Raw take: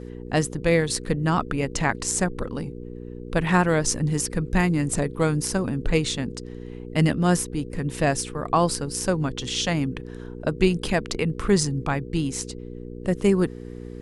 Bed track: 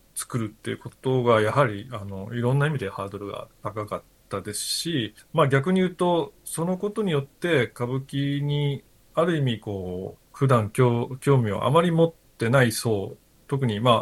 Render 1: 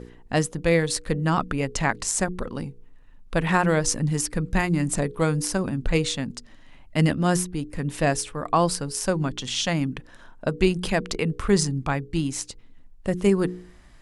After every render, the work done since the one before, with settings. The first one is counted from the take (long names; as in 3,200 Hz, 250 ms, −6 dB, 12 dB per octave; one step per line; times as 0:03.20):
hum removal 60 Hz, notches 8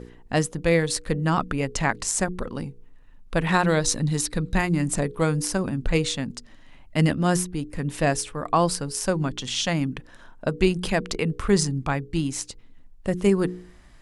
0:03.52–0:04.55: parametric band 3,900 Hz +14.5 dB 0.21 octaves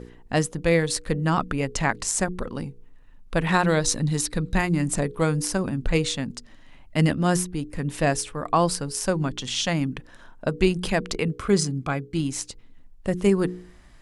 0:11.28–0:12.20: notch comb filter 920 Hz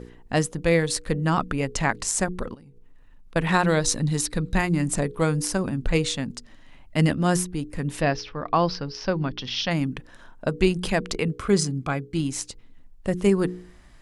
0:02.54–0:03.36: downward compressor 16 to 1, threshold −44 dBFS
0:08.01–0:09.71: elliptic low-pass filter 5,400 Hz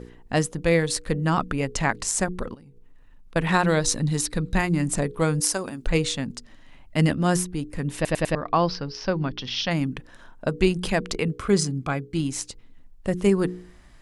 0:05.40–0:05.87: bass and treble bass −14 dB, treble +6 dB
0:07.95: stutter in place 0.10 s, 4 plays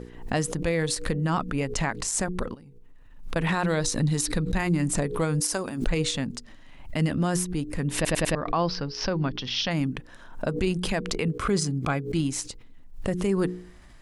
brickwall limiter −15.5 dBFS, peak gain reduction 9.5 dB
background raised ahead of every attack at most 100 dB per second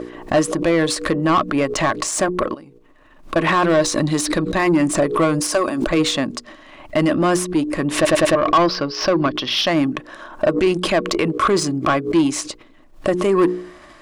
hollow resonant body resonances 330/600/1,100 Hz, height 12 dB, ringing for 40 ms
mid-hump overdrive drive 18 dB, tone 3,900 Hz, clips at −6 dBFS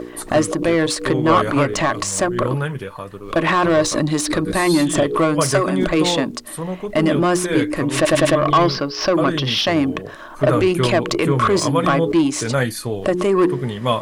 mix in bed track −0.5 dB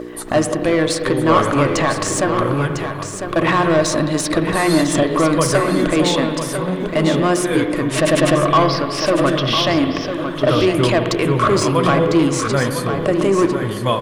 on a send: single-tap delay 1,001 ms −8.5 dB
on the sum: spring reverb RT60 2.5 s, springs 50/56 ms, chirp 40 ms, DRR 7.5 dB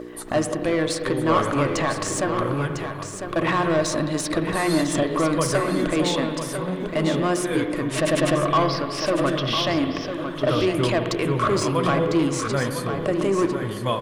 level −6 dB